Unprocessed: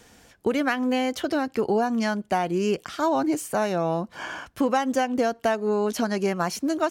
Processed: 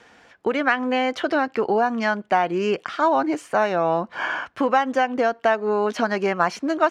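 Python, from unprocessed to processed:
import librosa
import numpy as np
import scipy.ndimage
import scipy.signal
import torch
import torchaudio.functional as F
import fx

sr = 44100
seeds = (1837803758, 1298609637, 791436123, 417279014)

p1 = scipy.signal.sosfilt(scipy.signal.butter(2, 1700.0, 'lowpass', fs=sr, output='sos'), x)
p2 = fx.tilt_eq(p1, sr, slope=4.0)
p3 = fx.rider(p2, sr, range_db=4, speed_s=0.5)
y = p2 + (p3 * librosa.db_to_amplitude(2.0))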